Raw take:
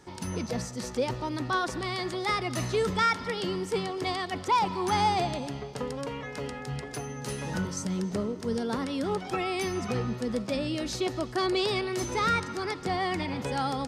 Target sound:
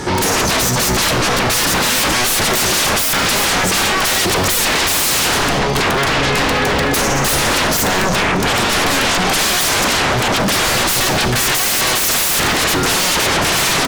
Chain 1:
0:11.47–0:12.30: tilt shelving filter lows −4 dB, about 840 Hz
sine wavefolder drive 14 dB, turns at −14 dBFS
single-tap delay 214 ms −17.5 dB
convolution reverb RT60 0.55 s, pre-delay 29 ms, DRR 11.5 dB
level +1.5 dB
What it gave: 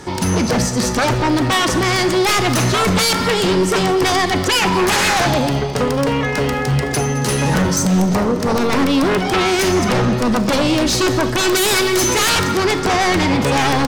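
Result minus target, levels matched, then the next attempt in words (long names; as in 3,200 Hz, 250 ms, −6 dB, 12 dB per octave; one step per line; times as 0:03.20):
sine wavefolder: distortion −27 dB
0:11.47–0:12.30: tilt shelving filter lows −4 dB, about 840 Hz
sine wavefolder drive 25 dB, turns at −14 dBFS
single-tap delay 214 ms −17.5 dB
convolution reverb RT60 0.55 s, pre-delay 29 ms, DRR 11.5 dB
level +1.5 dB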